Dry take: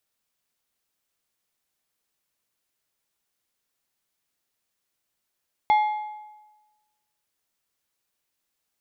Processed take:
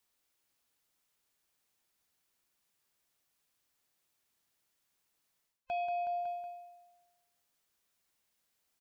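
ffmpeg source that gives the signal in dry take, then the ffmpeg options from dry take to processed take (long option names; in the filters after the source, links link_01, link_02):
-f lavfi -i "aevalsrc='0.2*pow(10,-3*t/1.18)*sin(2*PI*848*t)+0.0531*pow(10,-3*t/0.896)*sin(2*PI*2120*t)+0.0141*pow(10,-3*t/0.779)*sin(2*PI*3392*t)+0.00376*pow(10,-3*t/0.728)*sin(2*PI*4240*t)+0.001*pow(10,-3*t/0.673)*sin(2*PI*5512*t)':duration=1.55:sample_rate=44100"
-af "afftfilt=real='real(if(between(b,1,1008),(2*floor((b-1)/24)+1)*24-b,b),0)':imag='imag(if(between(b,1,1008),(2*floor((b-1)/24)+1)*24-b,b),0)*if(between(b,1,1008),-1,1)':win_size=2048:overlap=0.75,aecho=1:1:185|370|555|740:0.237|0.102|0.0438|0.0189,areverse,acompressor=threshold=-33dB:ratio=16,areverse"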